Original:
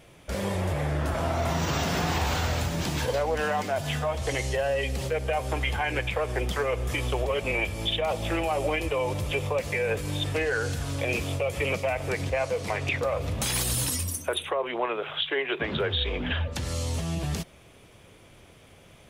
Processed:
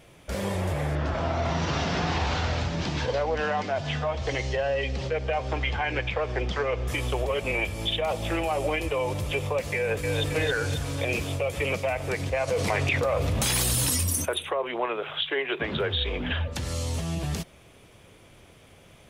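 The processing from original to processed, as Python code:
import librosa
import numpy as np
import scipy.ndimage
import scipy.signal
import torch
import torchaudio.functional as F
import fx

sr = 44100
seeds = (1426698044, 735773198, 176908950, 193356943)

y = fx.lowpass(x, sr, hz=5700.0, slope=24, at=(0.95, 6.88))
y = fx.echo_throw(y, sr, start_s=9.76, length_s=0.48, ms=270, feedback_pct=60, wet_db=-3.0)
y = fx.env_flatten(y, sr, amount_pct=70, at=(12.47, 14.24), fade=0.02)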